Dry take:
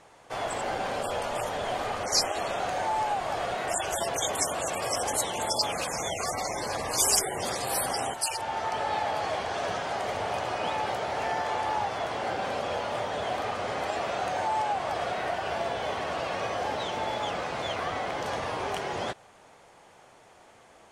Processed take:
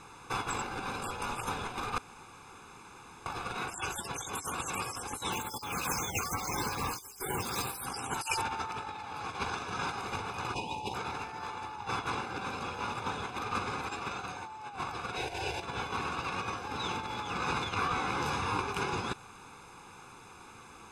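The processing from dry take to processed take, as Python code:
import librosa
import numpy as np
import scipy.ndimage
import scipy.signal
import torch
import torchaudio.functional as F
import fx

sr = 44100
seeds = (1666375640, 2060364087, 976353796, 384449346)

y = fx.resample_bad(x, sr, factor=2, down='none', up='hold', at=(5.32, 7.85))
y = fx.ellip_bandstop(y, sr, low_hz=950.0, high_hz=2600.0, order=3, stop_db=40, at=(10.54, 10.94))
y = fx.fixed_phaser(y, sr, hz=510.0, stages=4, at=(15.15, 15.61), fade=0.02)
y = fx.detune_double(y, sr, cents=21, at=(17.74, 18.59))
y = fx.edit(y, sr, fx.room_tone_fill(start_s=1.98, length_s=1.28), tone=tone)
y = fx.over_compress(y, sr, threshold_db=-34.0, ratio=-0.5)
y = y + 0.92 * np.pad(y, (int(0.8 * sr / 1000.0), 0))[:len(y)]
y = y * 10.0 ** (-1.5 / 20.0)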